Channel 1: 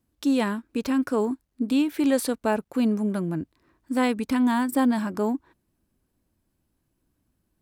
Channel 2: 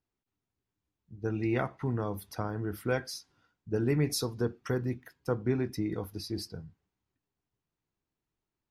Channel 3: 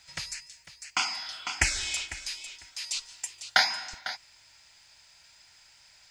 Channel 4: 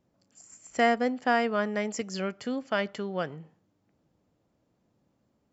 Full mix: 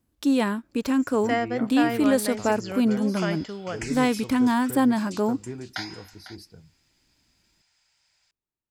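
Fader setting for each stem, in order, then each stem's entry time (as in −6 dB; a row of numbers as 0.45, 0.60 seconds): +1.0, −7.0, −11.5, −2.0 decibels; 0.00, 0.00, 2.20, 0.50 seconds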